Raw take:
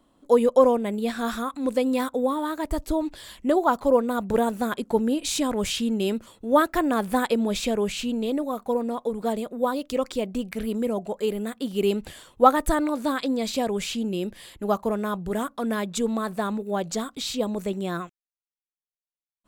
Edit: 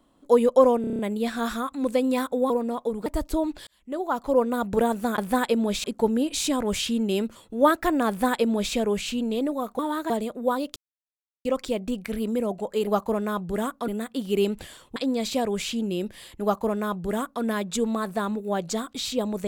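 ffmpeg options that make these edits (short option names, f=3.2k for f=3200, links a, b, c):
-filter_complex "[0:a]asplit=18[a][b][c][d][e][f][g][h][i][j][k][l][m][n][o][p][q][r];[a]atrim=end=0.842[s];[b]atrim=start=0.808:end=0.842[t];[c]atrim=start=0.808:end=0.842[u];[d]atrim=start=0.808:end=0.842[v];[e]atrim=start=0.808:end=0.842[w];[f]atrim=start=0.808:end=0.842[x];[g]atrim=start=0.808:end=2.322[y];[h]atrim=start=8.698:end=9.262[z];[i]atrim=start=2.628:end=3.24,asetpts=PTS-STARTPTS,afade=t=out:st=0.608:d=0.004:c=hsin[aa];[j]atrim=start=3.24:end=4.752,asetpts=PTS-STARTPTS,afade=t=in:d=0.84[ab];[k]atrim=start=6.988:end=7.652[ac];[l]atrim=start=4.748:end=8.702[ad];[m]atrim=start=2.318:end=2.632[ae];[n]atrim=start=9.258:end=9.92,asetpts=PTS-STARTPTS,afade=t=out:st=0.658:d=0.004:c=hsin,apad=pad_dur=0.69[af];[o]atrim=start=9.92:end=11.342,asetpts=PTS-STARTPTS,afade=t=in:d=0.004:c=hsin[ag];[p]atrim=start=14.638:end=15.652[ah];[q]atrim=start=11.338:end=12.422[ai];[r]atrim=start=13.178[aj];[s][t]acrossfade=d=0.004:c1=hsin:c2=hsin[ak];[ak][u]acrossfade=d=0.004:c1=hsin:c2=hsin[al];[al][v]acrossfade=d=0.004:c1=hsin:c2=hsin[am];[am][w]acrossfade=d=0.004:c1=hsin:c2=hsin[an];[an][x]acrossfade=d=0.004:c1=hsin:c2=hsin[ao];[ao][y]acrossfade=d=0.004:c1=hsin:c2=hsin[ap];[ap][z]acrossfade=d=0.004:c1=hsin:c2=hsin[aq];[aa][ab]concat=n=2:v=0:a=1[ar];[aq][ar]acrossfade=d=0.004:c1=hsin:c2=hsin[as];[as][ac]acrossfade=d=0.004:c1=hsin:c2=hsin[at];[at][ad]acrossfade=d=0.004:c1=hsin:c2=hsin[au];[au][ae]acrossfade=d=0.004:c1=hsin:c2=hsin[av];[af][ag]concat=n=2:v=0:a=1[aw];[av][aw]acrossfade=d=0.004:c1=hsin:c2=hsin[ax];[ax][ah]acrossfade=d=0.004:c1=hsin:c2=hsin[ay];[ay][ai]acrossfade=d=0.004:c1=hsin:c2=hsin[az];[az][aj]acrossfade=d=0.004:c1=hsin:c2=hsin"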